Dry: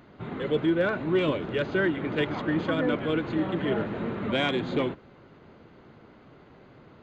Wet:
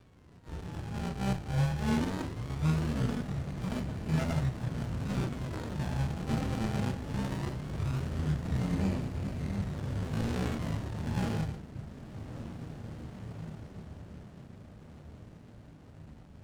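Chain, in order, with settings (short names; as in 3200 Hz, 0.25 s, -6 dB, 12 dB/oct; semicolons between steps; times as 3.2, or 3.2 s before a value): HPF 79 Hz 24 dB/oct; in parallel at -1 dB: limiter -23.5 dBFS, peak gain reduction 9.5 dB; on the sum: decimation with a swept rate 16×, swing 100% 0.45 Hz; diffused feedback echo 0.922 s, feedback 41%, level -10 dB; chorus voices 6, 1.1 Hz, delay 14 ms, depth 3 ms; speed mistake 78 rpm record played at 33 rpm; running maximum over 33 samples; gain -6 dB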